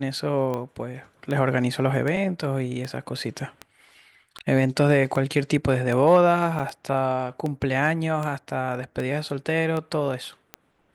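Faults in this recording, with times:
scratch tick 78 rpm −17 dBFS
0:06.59: drop-out 5 ms

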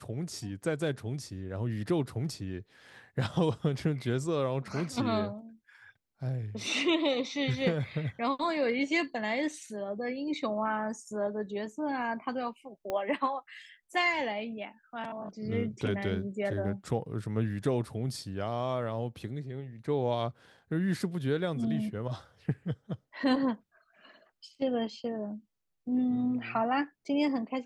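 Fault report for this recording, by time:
0:12.90: click −20 dBFS

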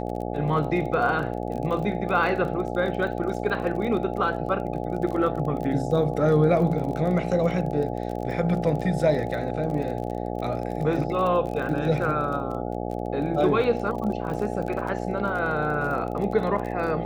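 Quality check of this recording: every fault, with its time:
mains buzz 60 Hz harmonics 14 −30 dBFS
surface crackle 31 per second −32 dBFS

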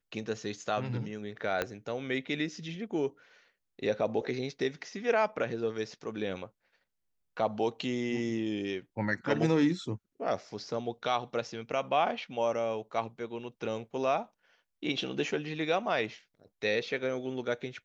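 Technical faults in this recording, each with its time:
0:01.62: click −15 dBFS

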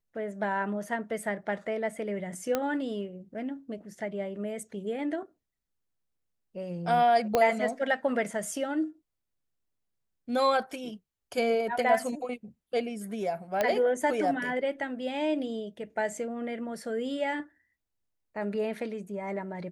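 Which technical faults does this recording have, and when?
0:02.55: click −13 dBFS
0:07.35: click −11 dBFS
0:13.61: click −13 dBFS

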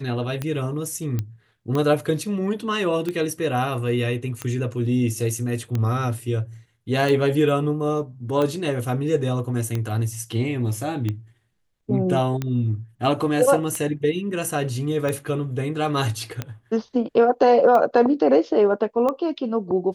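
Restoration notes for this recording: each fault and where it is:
scratch tick 45 rpm −13 dBFS
0:01.19: click −13 dBFS

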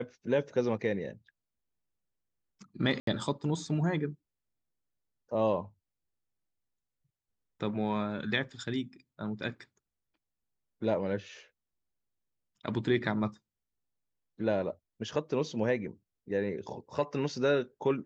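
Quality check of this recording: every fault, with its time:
0:03.00–0:03.07: drop-out 73 ms

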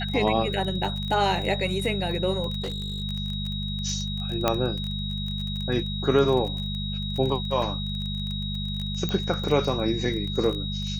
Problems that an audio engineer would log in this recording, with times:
surface crackle 21 per second −29 dBFS
mains hum 50 Hz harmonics 4 −31 dBFS
whistle 3,800 Hz −33 dBFS
0:02.62–0:03.02: clipping −26.5 dBFS
0:04.48: click −7 dBFS
0:09.09: click −14 dBFS

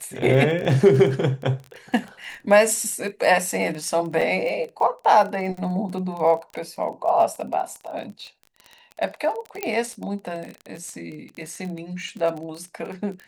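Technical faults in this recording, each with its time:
surface crackle 24 per second −29 dBFS
0:04.21–0:04.22: drop-out 5.7 ms
0:09.63: click −10 dBFS

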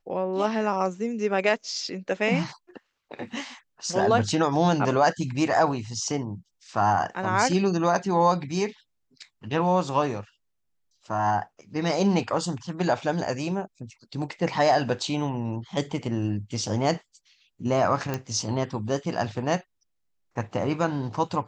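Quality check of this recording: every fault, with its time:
0:18.14: click −14 dBFS

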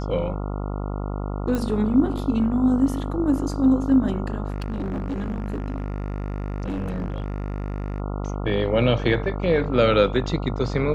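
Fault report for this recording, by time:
mains buzz 50 Hz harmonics 28 −28 dBFS
0:01.55: click −14 dBFS
0:04.50–0:08.00: clipping −23.5 dBFS

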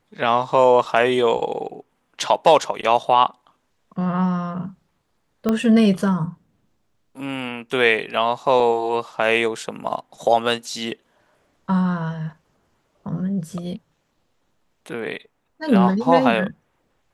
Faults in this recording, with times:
0:05.49: click −9 dBFS
0:08.60: drop-out 4.9 ms

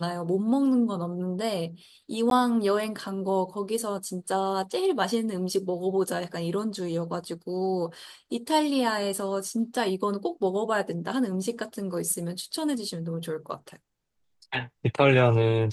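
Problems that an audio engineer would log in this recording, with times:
0:02.30–0:02.31: drop-out 12 ms

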